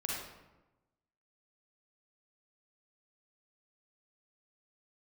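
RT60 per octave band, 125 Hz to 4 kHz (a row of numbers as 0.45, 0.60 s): 1.3, 1.2, 1.1, 1.0, 0.85, 0.65 s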